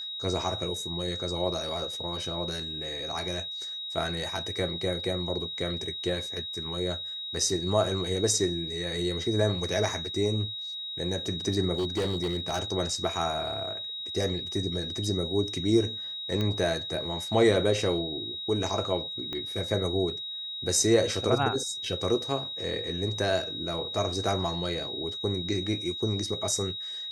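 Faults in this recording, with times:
tone 3800 Hz -34 dBFS
11.75–12.6 clipped -24 dBFS
16.41 pop -17 dBFS
19.33 pop -21 dBFS

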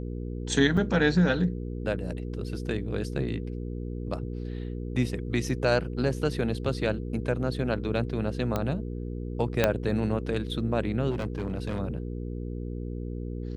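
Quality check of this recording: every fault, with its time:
hum 60 Hz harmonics 8 -34 dBFS
0.77–0.78 gap 5.2 ms
8.56 pop -14 dBFS
9.64 pop -7 dBFS
11.1–11.79 clipped -26 dBFS

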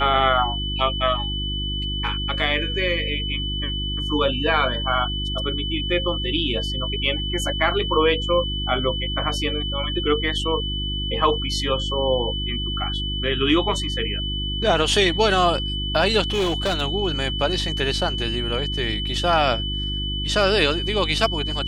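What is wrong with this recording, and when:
hum 50 Hz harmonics 7 -28 dBFS
tone 3000 Hz -27 dBFS
16.32–16.82 clipped -17.5 dBFS

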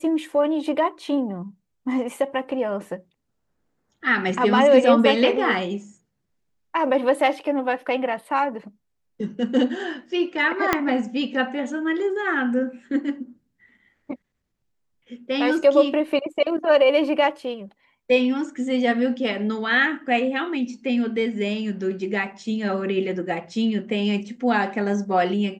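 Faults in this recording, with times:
10.73 pop -4 dBFS

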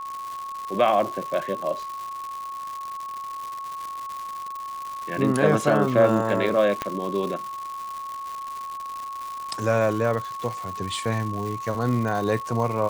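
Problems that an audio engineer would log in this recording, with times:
crackle 270/s -30 dBFS
tone 1100 Hz -31 dBFS
6.82 pop -11 dBFS

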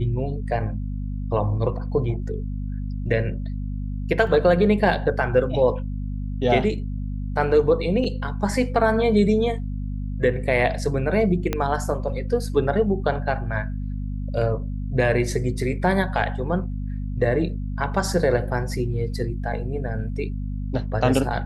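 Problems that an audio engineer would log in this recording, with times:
hum 50 Hz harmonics 5 -28 dBFS
4.27 gap 2.5 ms
8.04 gap 4.5 ms
11.53 pop -9 dBFS

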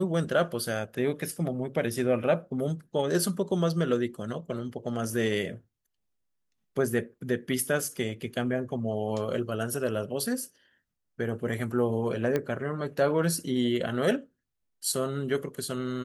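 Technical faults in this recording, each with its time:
12.36 pop -15 dBFS

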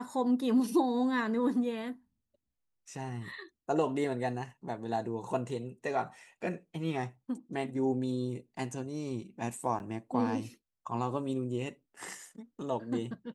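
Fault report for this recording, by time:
9.79–9.8 gap 9.8 ms

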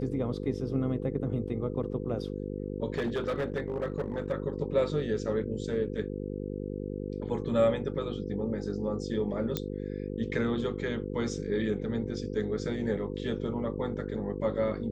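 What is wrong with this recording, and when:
buzz 50 Hz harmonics 10 -36 dBFS
2.92–4.32 clipped -26 dBFS
9.57 pop -14 dBFS

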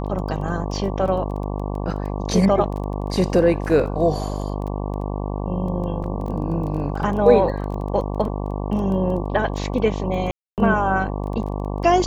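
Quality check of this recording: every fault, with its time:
buzz 50 Hz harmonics 23 -26 dBFS
crackle 10/s -29 dBFS
6.04 gap 2.8 ms
10.31–10.58 gap 0.268 s

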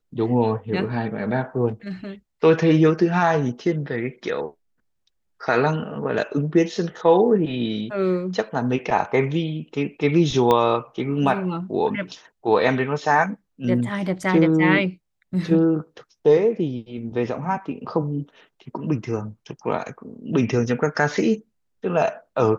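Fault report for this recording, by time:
1.68–2.07 clipped -24.5 dBFS
10.51 pop -7 dBFS

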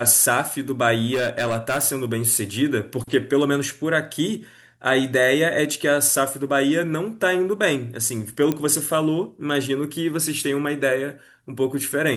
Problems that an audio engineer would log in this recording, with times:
1.13–1.85 clipped -18 dBFS
8.52 pop -10 dBFS

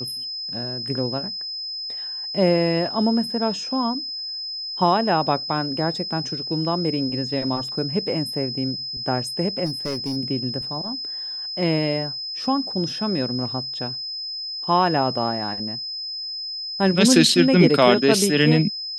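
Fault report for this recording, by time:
tone 5100 Hz -28 dBFS
9.65–10.17 clipped -21.5 dBFS

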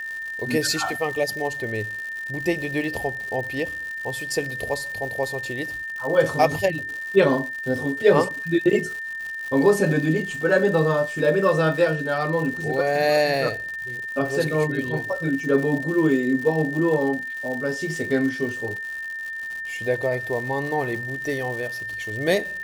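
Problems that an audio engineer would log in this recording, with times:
crackle 190/s -31 dBFS
tone 1800 Hz -29 dBFS

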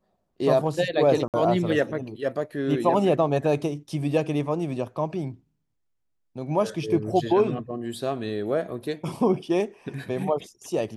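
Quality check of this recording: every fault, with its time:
1.28–1.34 gap 58 ms

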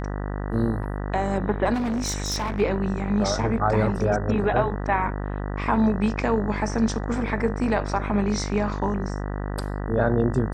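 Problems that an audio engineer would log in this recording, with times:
buzz 50 Hz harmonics 39 -29 dBFS
1.73–2.61 clipped -22.5 dBFS

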